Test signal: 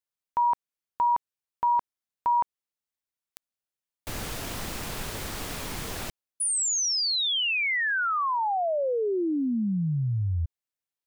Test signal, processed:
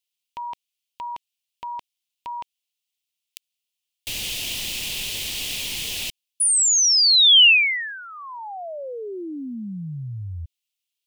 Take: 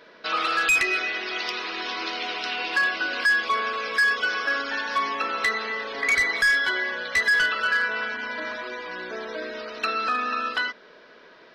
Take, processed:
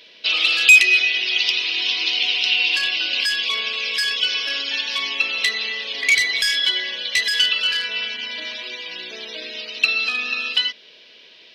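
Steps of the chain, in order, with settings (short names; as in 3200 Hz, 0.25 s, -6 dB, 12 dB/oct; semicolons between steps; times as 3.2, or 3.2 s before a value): resonant high shelf 2000 Hz +12.5 dB, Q 3; gain -5 dB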